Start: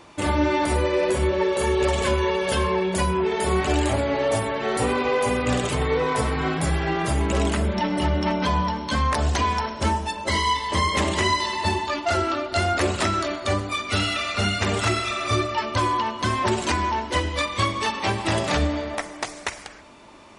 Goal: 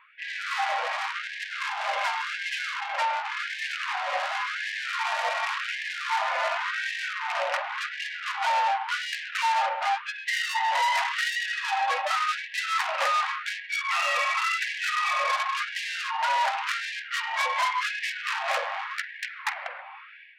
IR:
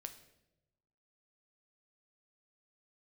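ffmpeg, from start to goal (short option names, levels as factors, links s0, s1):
-af "dynaudnorm=f=200:g=3:m=3.98,highpass=f=270:t=q:w=0.5412,highpass=f=270:t=q:w=1.307,lowpass=f=2800:t=q:w=0.5176,lowpass=f=2800:t=q:w=0.7071,lowpass=f=2800:t=q:w=1.932,afreqshift=-100,aeval=exprs='(tanh(11.2*val(0)+0.45)-tanh(0.45))/11.2':c=same,afftfilt=real='re*gte(b*sr/1024,510*pow(1600/510,0.5+0.5*sin(2*PI*0.9*pts/sr)))':imag='im*gte(b*sr/1024,510*pow(1600/510,0.5+0.5*sin(2*PI*0.9*pts/sr)))':win_size=1024:overlap=0.75"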